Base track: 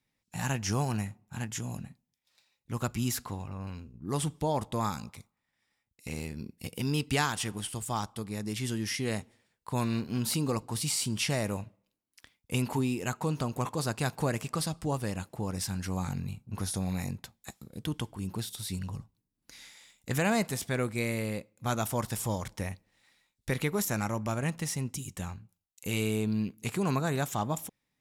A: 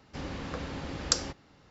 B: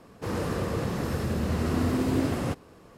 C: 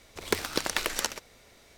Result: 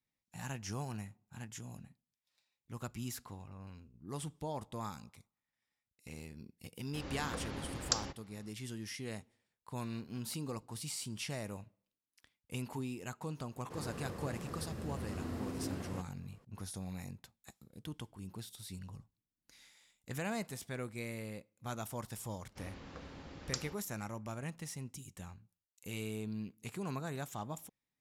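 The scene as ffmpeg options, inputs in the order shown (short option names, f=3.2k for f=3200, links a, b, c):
-filter_complex "[1:a]asplit=2[a][b];[0:a]volume=-11dB[c];[a]dynaudnorm=f=170:g=3:m=6dB,atrim=end=1.7,asetpts=PTS-STARTPTS,volume=-10.5dB,afade=t=in:d=0.004:c=hsin,afade=t=out:st=1.696:d=0.004:c=hsin,adelay=6800[d];[2:a]atrim=end=2.97,asetpts=PTS-STARTPTS,volume=-15dB,afade=t=in:d=0.004:c=hsin,afade=t=out:st=2.966:d=0.004:c=hsin,adelay=594468S[e];[b]atrim=end=1.7,asetpts=PTS-STARTPTS,volume=-12.5dB,afade=t=in:d=0.004:c=hsin,afade=t=out:st=1.696:d=0.004:c=hsin,adelay=22420[f];[c][d][e][f]amix=inputs=4:normalize=0"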